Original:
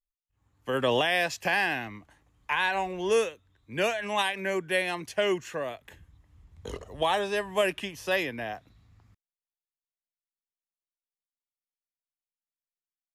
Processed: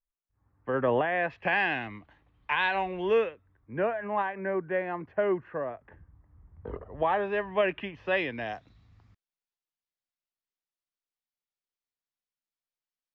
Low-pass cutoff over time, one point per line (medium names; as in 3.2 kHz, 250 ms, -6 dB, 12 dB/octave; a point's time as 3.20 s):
low-pass 24 dB/octave
1.13 s 1.8 kHz
1.77 s 3.7 kHz
2.81 s 3.7 kHz
3.76 s 1.6 kHz
6.80 s 1.6 kHz
7.44 s 2.6 kHz
8.09 s 2.6 kHz
8.50 s 5.8 kHz